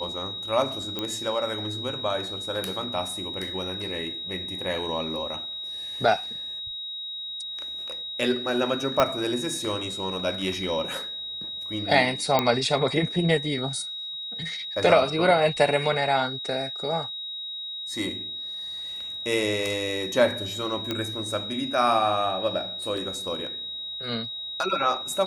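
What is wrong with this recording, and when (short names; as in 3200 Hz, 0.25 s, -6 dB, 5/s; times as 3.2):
tone 3800 Hz -32 dBFS
0.99 pop -14 dBFS
9 pop -6 dBFS
12.39 pop -7 dBFS
20.91 pop -13 dBFS
22.97 gap 3.6 ms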